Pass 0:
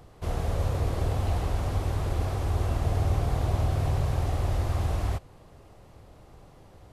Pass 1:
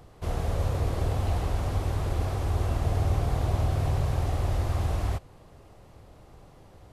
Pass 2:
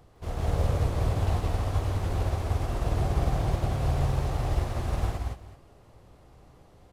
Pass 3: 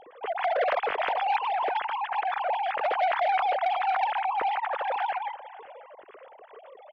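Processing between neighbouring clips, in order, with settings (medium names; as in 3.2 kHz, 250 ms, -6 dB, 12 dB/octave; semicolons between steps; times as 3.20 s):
no audible change
self-modulated delay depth 0.18 ms; on a send: multi-tap echo 160/177/379 ms -3.5/-7/-14 dB; on the sum: upward expansion 1.5:1, over -31 dBFS
formants replaced by sine waves; delay 544 ms -20 dB; transformer saturation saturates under 1.2 kHz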